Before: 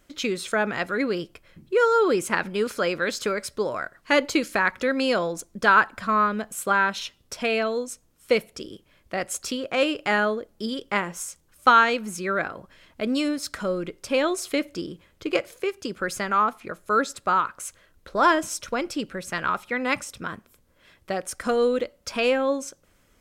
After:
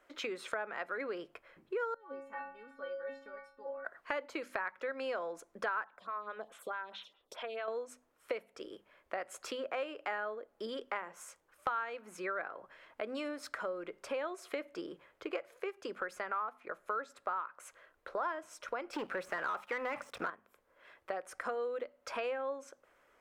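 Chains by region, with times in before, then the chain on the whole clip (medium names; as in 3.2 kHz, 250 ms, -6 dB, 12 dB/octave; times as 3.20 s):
1.94–3.85 s: RIAA curve playback + inharmonic resonator 270 Hz, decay 0.54 s, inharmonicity 0.008
5.84–7.68 s: peaking EQ 3.5 kHz +14 dB 0.48 oct + compression 4:1, threshold -31 dBFS + lamp-driven phase shifter 4.7 Hz
18.93–20.30 s: de-esser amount 95% + waveshaping leveller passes 3
whole clip: three-band isolator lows -22 dB, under 410 Hz, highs -16 dB, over 2.2 kHz; hum notches 50/100/150/200/250 Hz; compression 4:1, threshold -38 dBFS; trim +1 dB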